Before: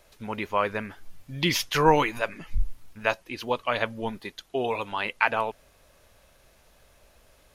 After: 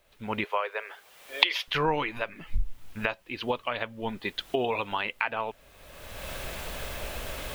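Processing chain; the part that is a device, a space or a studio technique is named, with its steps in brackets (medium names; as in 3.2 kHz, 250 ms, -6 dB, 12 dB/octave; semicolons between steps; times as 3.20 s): 0.44–1.68 s: steep high-pass 410 Hz 48 dB/octave; resonant high shelf 4.8 kHz -12 dB, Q 1.5; cheap recorder with automatic gain (white noise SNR 38 dB; recorder AGC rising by 30 dB/s); trim -8.5 dB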